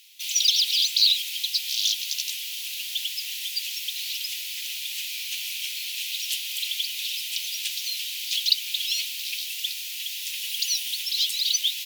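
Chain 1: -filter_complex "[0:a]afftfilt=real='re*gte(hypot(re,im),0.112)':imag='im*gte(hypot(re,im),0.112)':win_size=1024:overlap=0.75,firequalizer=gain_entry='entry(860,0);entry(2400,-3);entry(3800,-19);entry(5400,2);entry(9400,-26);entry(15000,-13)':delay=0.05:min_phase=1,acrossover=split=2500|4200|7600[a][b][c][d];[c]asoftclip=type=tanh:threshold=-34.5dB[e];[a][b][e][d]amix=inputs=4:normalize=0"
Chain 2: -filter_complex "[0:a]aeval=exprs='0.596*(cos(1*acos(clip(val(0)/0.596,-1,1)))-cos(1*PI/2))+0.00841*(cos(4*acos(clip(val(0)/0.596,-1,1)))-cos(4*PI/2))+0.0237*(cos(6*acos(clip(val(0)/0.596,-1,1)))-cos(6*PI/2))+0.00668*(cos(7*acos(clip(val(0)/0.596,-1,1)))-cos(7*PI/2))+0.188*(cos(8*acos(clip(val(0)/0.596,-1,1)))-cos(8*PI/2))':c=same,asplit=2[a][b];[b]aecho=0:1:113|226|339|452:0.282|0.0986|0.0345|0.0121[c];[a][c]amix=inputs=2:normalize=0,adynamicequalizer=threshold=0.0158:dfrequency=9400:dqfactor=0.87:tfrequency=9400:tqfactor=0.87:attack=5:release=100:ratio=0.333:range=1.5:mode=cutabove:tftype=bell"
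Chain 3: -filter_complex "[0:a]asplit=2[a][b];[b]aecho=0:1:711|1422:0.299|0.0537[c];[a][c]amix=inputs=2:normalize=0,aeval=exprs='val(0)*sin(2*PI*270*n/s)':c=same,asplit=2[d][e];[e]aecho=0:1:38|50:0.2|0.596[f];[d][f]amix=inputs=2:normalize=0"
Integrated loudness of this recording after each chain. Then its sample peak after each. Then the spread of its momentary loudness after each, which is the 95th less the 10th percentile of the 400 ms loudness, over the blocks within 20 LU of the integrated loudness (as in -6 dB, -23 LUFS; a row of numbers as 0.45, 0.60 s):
-36.0, -23.5, -26.0 LUFS; -19.0, -1.0, -6.5 dBFS; 24, 12, 10 LU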